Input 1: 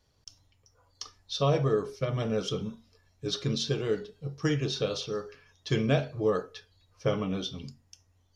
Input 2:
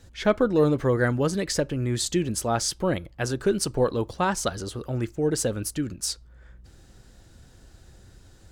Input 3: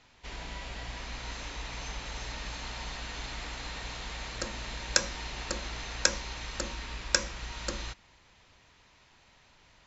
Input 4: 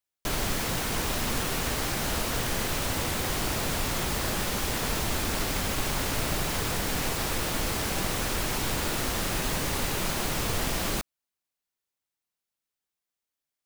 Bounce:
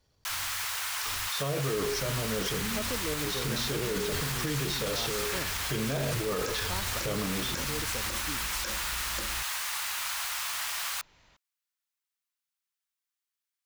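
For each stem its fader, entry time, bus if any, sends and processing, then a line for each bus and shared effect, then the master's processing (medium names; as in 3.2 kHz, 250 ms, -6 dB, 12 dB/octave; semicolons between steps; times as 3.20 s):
-2.0 dB, 0.00 s, no send, decay stretcher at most 23 dB/s
-14.0 dB, 2.50 s, no send, none
-1.5 dB, 1.50 s, no send, none
-1.0 dB, 0.00 s, no send, high-pass 1 kHz 24 dB/octave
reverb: none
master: peak limiter -21.5 dBFS, peak gain reduction 16.5 dB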